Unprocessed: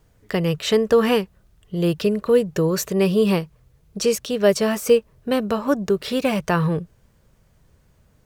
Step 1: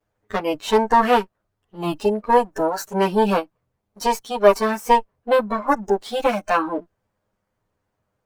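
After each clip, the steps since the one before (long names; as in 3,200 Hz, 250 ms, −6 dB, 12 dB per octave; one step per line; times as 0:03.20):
lower of the sound and its delayed copy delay 9.7 ms
noise reduction from a noise print of the clip's start 14 dB
parametric band 890 Hz +11.5 dB 2.7 octaves
level −5 dB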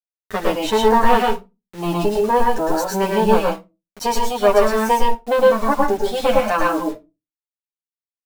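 in parallel at −1 dB: downward compressor 12 to 1, threshold −24 dBFS, peak gain reduction 17 dB
on the sum: bit-depth reduction 6 bits, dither none
convolution reverb RT60 0.25 s, pre-delay 104 ms, DRR −0.5 dB
level −3.5 dB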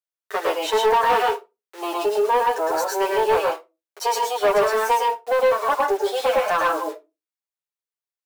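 elliptic high-pass filter 380 Hz, stop band 60 dB
parametric band 1,400 Hz +2 dB
soft clipping −12 dBFS, distortion −14 dB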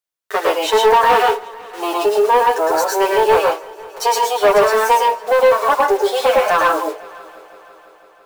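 echo machine with several playback heads 167 ms, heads first and third, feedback 63%, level −24 dB
level +6 dB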